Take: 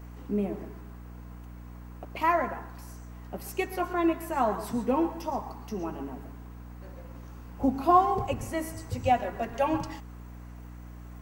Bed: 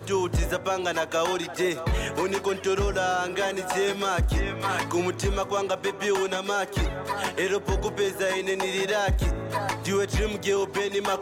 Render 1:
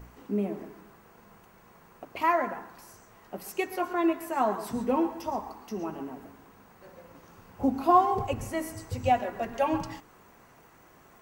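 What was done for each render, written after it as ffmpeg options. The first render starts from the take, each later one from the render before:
-af "bandreject=f=60:t=h:w=4,bandreject=f=120:t=h:w=4,bandreject=f=180:t=h:w=4,bandreject=f=240:t=h:w=4,bandreject=f=300:t=h:w=4"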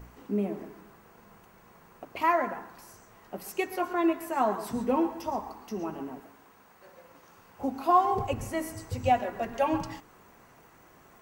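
-filter_complex "[0:a]asettb=1/sr,asplit=3[a][b][c];[a]atrim=end=6.204[d];[b]atrim=start=6.2:end=8.05,asetpts=PTS-STARTPTS,afade=t=in:d=0.004:c=qsin,afade=t=out:st=1.846:d=0.004:c=qsin,lowshelf=f=320:g=-10.5[e];[c]atrim=start=8.046[f];[d][e]acrossfade=d=0.004:c1=hsin:c2=qsin[g];[g][f]acrossfade=d=0.004:c1=qsin:c2=hsin"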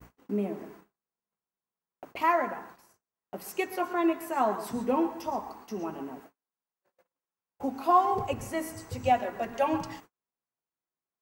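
-af "agate=range=-42dB:threshold=-48dB:ratio=16:detection=peak,lowshelf=f=88:g=-9"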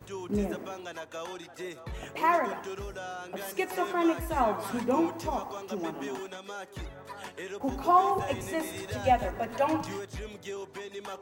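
-filter_complex "[1:a]volume=-14dB[a];[0:a][a]amix=inputs=2:normalize=0"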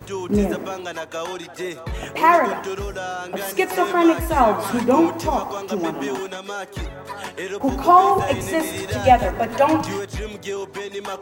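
-af "volume=10.5dB,alimiter=limit=-2dB:level=0:latency=1"

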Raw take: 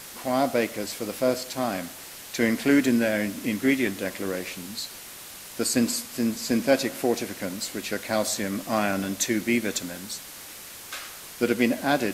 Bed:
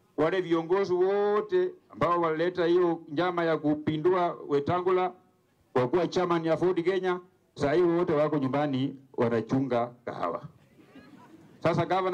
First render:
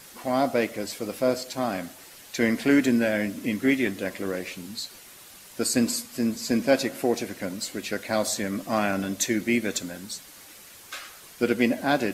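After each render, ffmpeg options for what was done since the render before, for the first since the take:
-af "afftdn=nr=7:nf=-42"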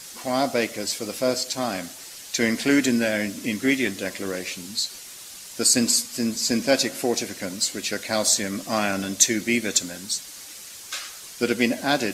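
-af "equalizer=f=6.2k:t=o:w=2:g=10.5"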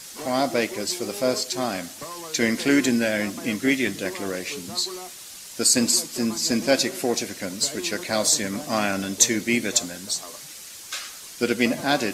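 -filter_complex "[1:a]volume=-12.5dB[a];[0:a][a]amix=inputs=2:normalize=0"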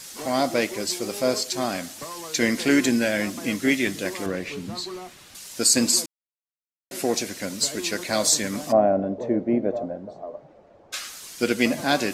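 -filter_complex "[0:a]asettb=1/sr,asplit=3[a][b][c];[a]atrim=end=4.264[d];[b]atrim=start=4.26:end=5.35,asetpts=PTS-STARTPTS,afade=t=in:d=0.004:c=qsin,afade=t=out:st=1.086:d=0.004:c=qsin,bass=f=250:g=6,treble=f=4k:g=-12[e];[c]atrim=start=5.346[f];[d][e]acrossfade=d=0.004:c1=hsin:c2=qsin[g];[g][f]acrossfade=d=0.004:c1=qsin:c2=hsin,asplit=3[h][i][j];[h]afade=t=out:st=8.71:d=0.02[k];[i]lowpass=f=630:t=q:w=3.6,afade=t=in:st=8.71:d=0.02,afade=t=out:st=10.92:d=0.02[l];[j]afade=t=in:st=10.92:d=0.02[m];[k][l][m]amix=inputs=3:normalize=0,asplit=3[n][o][p];[n]atrim=end=6.06,asetpts=PTS-STARTPTS,afade=t=out:st=6.056:d=0.004:c=hsin[q];[o]atrim=start=6.06:end=6.91,asetpts=PTS-STARTPTS,volume=0[r];[p]atrim=start=6.91,asetpts=PTS-STARTPTS,afade=t=in:d=0.004:c=hsin[s];[q][r][s]concat=n=3:v=0:a=1"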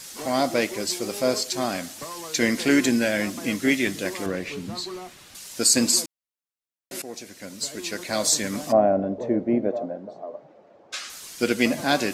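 -filter_complex "[0:a]asettb=1/sr,asplit=3[a][b][c];[a]atrim=end=9.694[d];[b]atrim=start=9.69:end=11.1,asetpts=PTS-STARTPTS,afade=t=in:d=0.004:c=qsin,afade=t=out:st=1.406:d=0.004:c=qsin,highpass=170,lowpass=7.6k[e];[c]atrim=start=11.096[f];[d][e]acrossfade=d=0.004:c1=hsin:c2=qsin[g];[g][f]acrossfade=d=0.004:c1=qsin:c2=hsin,asplit=2[h][i];[h]atrim=end=7.02,asetpts=PTS-STARTPTS,afade=t=out:st=7.016:d=0.004:c=hsin:silence=0.158489[j];[i]atrim=start=7.02,asetpts=PTS-STARTPTS,afade=t=in:d=1.53:silence=0.158489[k];[j][k]concat=n=2:v=0:a=1"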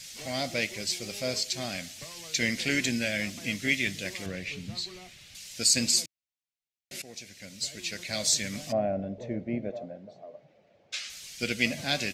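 -af "firequalizer=gain_entry='entry(120,0);entry(300,-14);entry(610,-9);entry(1000,-17);entry(2200,0);entry(6300,-3);entry(9900,-9)':delay=0.05:min_phase=1"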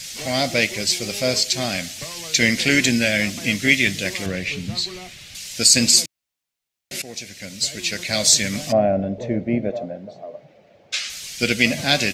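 -af "volume=10.5dB,alimiter=limit=-1dB:level=0:latency=1"

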